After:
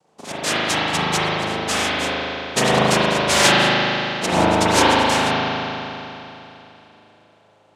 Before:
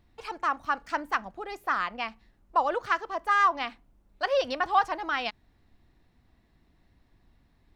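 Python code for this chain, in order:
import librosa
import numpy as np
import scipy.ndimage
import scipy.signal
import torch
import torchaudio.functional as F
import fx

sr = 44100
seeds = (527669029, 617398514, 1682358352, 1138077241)

y = fx.noise_vocoder(x, sr, seeds[0], bands=2)
y = fx.rev_spring(y, sr, rt60_s=3.2, pass_ms=(38,), chirp_ms=60, drr_db=-9.5)
y = y * 10.0 ** (2.5 / 20.0)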